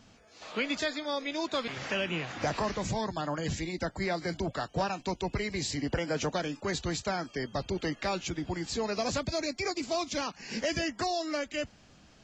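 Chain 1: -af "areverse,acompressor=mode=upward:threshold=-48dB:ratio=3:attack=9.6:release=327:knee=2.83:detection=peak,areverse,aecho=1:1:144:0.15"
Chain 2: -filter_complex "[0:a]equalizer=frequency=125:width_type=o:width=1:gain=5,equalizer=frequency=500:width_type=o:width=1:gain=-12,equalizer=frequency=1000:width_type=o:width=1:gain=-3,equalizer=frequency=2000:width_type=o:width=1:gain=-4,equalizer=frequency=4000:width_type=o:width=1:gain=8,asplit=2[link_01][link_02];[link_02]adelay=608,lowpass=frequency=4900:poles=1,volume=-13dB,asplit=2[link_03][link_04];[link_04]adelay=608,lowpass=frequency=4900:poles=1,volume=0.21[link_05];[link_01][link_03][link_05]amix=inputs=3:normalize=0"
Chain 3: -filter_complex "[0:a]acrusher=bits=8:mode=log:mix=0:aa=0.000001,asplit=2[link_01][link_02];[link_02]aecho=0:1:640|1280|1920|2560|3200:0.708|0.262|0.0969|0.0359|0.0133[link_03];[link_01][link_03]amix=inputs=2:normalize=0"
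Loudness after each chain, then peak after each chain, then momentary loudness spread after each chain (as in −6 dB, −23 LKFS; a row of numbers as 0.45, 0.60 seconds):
−33.0, −33.0, −31.0 LKFS; −19.0, −18.0, −17.5 dBFS; 4, 5, 3 LU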